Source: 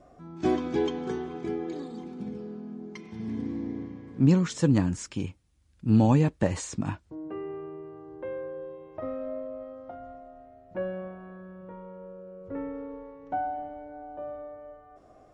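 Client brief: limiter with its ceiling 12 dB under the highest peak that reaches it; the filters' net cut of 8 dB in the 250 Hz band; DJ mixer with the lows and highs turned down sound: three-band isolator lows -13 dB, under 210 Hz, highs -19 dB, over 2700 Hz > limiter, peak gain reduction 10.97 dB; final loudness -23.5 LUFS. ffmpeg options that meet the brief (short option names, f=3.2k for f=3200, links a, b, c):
-filter_complex "[0:a]equalizer=f=250:t=o:g=-6.5,alimiter=level_in=1dB:limit=-24dB:level=0:latency=1,volume=-1dB,acrossover=split=210 2700:gain=0.224 1 0.112[a][b][c];[a][b][c]amix=inputs=3:normalize=0,volume=21.5dB,alimiter=limit=-14dB:level=0:latency=1"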